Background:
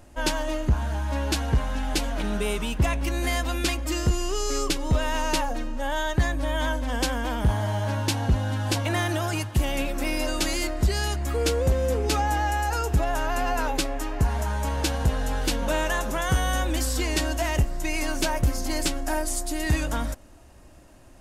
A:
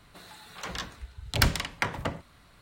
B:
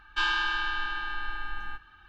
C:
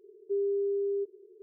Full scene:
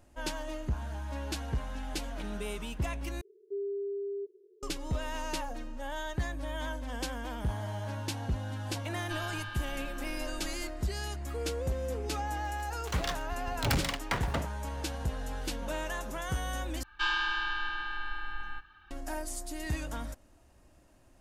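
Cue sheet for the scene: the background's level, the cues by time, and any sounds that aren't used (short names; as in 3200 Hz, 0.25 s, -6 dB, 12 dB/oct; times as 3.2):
background -10.5 dB
3.21 replace with C -6 dB
8.93 add B -13 dB
12.29 add A -17.5 dB + sample leveller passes 5
16.83 replace with B -3 dB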